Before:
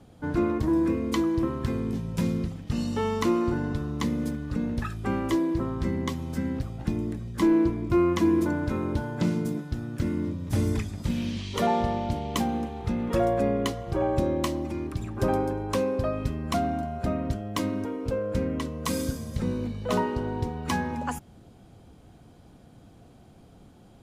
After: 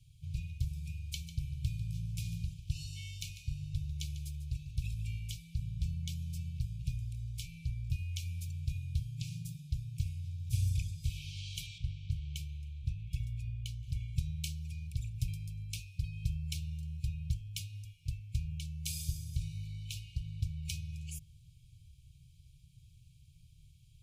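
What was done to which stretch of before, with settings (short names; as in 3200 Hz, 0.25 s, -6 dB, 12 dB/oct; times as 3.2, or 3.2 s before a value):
1.07–5.17 echo 0.147 s -12.5 dB
11.78–13.83 high shelf 2500 Hz -9 dB
whole clip: FFT band-reject 170–2200 Hz; passive tone stack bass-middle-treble 6-0-2; notches 50/100/150 Hz; gain +10.5 dB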